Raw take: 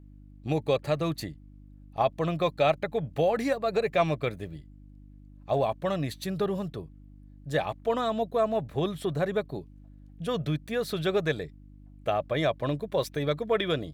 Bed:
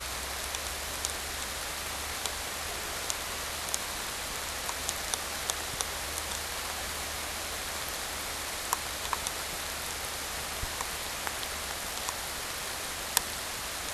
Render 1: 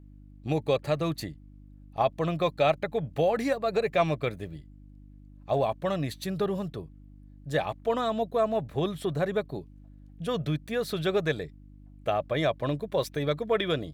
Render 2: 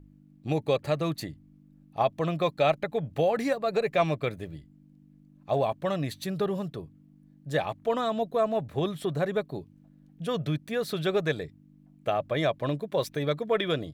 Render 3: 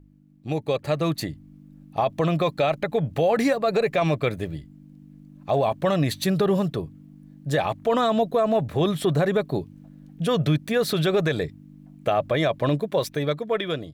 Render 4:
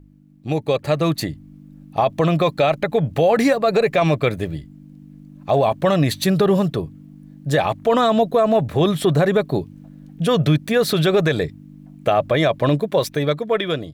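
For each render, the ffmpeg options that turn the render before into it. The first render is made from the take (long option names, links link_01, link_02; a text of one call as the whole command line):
ffmpeg -i in.wav -af anull out.wav
ffmpeg -i in.wav -af "bandreject=frequency=50:width_type=h:width=4,bandreject=frequency=100:width_type=h:width=4" out.wav
ffmpeg -i in.wav -af "dynaudnorm=framelen=170:gausssize=13:maxgain=10.5dB,alimiter=limit=-13dB:level=0:latency=1:release=41" out.wav
ffmpeg -i in.wav -af "volume=5dB" out.wav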